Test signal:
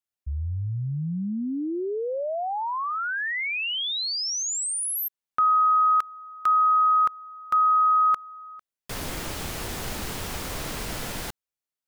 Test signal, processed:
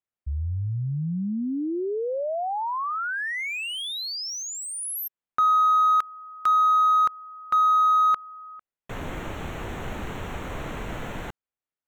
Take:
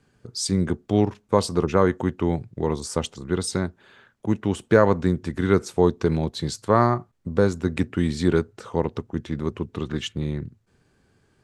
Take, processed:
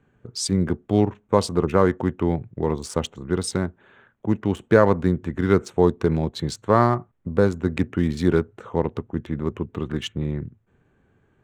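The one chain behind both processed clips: Wiener smoothing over 9 samples; gain +1 dB

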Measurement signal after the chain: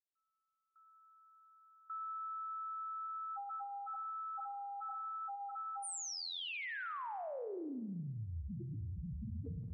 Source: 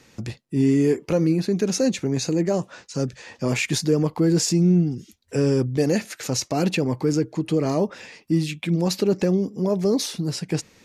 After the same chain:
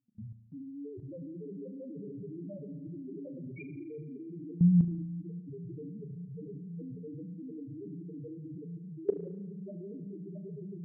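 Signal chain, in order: on a send: diffused feedback echo 0.595 s, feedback 76%, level -3.5 dB; on the sum: loudest bins only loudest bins 1; level quantiser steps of 22 dB; spring tank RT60 1.1 s, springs 35 ms, chirp 60 ms, DRR 9 dB; gain +1 dB

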